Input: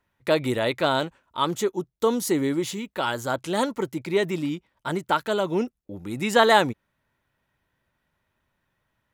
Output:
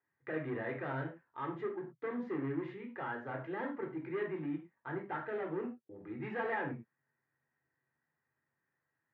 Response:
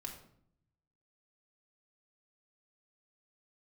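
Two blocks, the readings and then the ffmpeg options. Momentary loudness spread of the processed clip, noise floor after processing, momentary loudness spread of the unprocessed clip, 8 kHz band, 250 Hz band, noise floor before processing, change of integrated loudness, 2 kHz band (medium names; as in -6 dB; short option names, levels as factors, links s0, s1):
6 LU, under -85 dBFS, 11 LU, under -40 dB, -13.0 dB, -77 dBFS, -15.0 dB, -13.5 dB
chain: -filter_complex "[0:a]volume=14.1,asoftclip=hard,volume=0.0708,highpass=f=120:w=0.5412,highpass=f=120:w=1.3066,equalizer=f=130:t=q:w=4:g=4,equalizer=f=190:t=q:w=4:g=-9,equalizer=f=1800:t=q:w=4:g=8,lowpass=f=2100:w=0.5412,lowpass=f=2100:w=1.3066[s0];[1:a]atrim=start_sample=2205,afade=t=out:st=0.2:d=0.01,atrim=end_sample=9261,asetrate=57330,aresample=44100[s1];[s0][s1]afir=irnorm=-1:irlink=0,volume=0.473"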